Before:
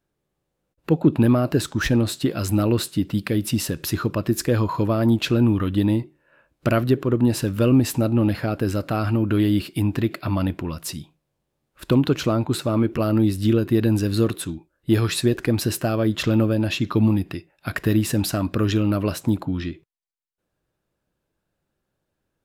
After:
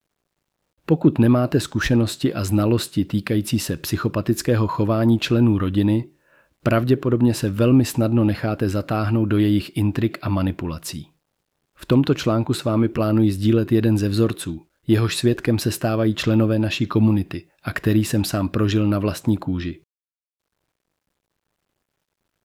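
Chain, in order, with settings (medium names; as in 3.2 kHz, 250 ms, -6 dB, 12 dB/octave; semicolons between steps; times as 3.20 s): treble shelf 8.4 kHz -4.5 dB; bit crusher 12-bit; trim +1.5 dB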